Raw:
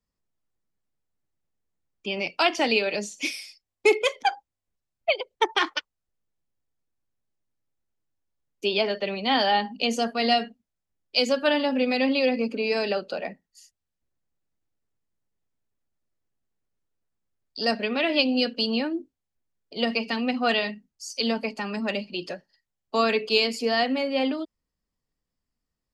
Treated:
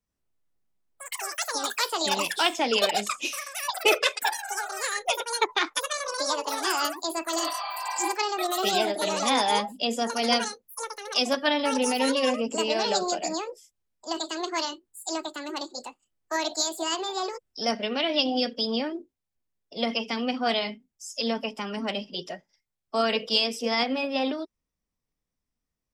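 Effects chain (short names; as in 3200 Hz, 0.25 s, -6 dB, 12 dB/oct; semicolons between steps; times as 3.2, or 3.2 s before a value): echoes that change speed 92 ms, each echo +6 st, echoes 3; spectral repair 7.41–8.08, 510–4700 Hz both; formant shift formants +2 st; gain -2 dB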